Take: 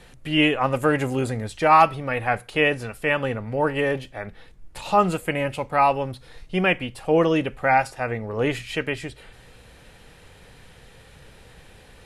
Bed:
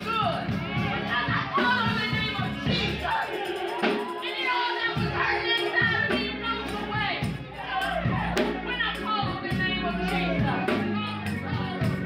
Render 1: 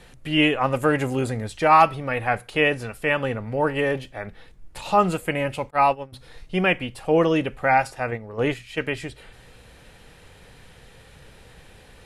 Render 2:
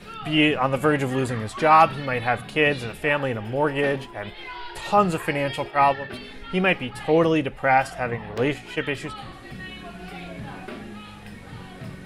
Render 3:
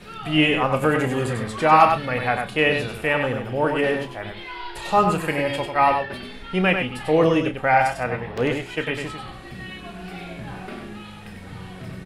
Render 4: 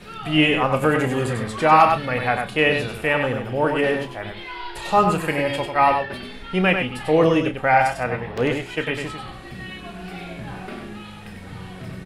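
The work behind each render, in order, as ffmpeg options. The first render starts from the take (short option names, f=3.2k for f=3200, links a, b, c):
-filter_complex "[0:a]asplit=3[a][b][c];[a]afade=t=out:st=5.69:d=0.02[d];[b]agate=range=-33dB:threshold=-19dB:ratio=3:release=100:detection=peak,afade=t=in:st=5.69:d=0.02,afade=t=out:st=6.12:d=0.02[e];[c]afade=t=in:st=6.12:d=0.02[f];[d][e][f]amix=inputs=3:normalize=0,asplit=3[g][h][i];[g]afade=t=out:st=8.1:d=0.02[j];[h]agate=range=-7dB:threshold=-28dB:ratio=16:release=100:detection=peak,afade=t=in:st=8.1:d=0.02,afade=t=out:st=8.81:d=0.02[k];[i]afade=t=in:st=8.81:d=0.02[l];[j][k][l]amix=inputs=3:normalize=0"
-filter_complex "[1:a]volume=-11dB[a];[0:a][a]amix=inputs=2:normalize=0"
-filter_complex "[0:a]asplit=2[a][b];[b]adelay=32,volume=-11.5dB[c];[a][c]amix=inputs=2:normalize=0,aecho=1:1:97:0.531"
-af "volume=1dB,alimiter=limit=-3dB:level=0:latency=1"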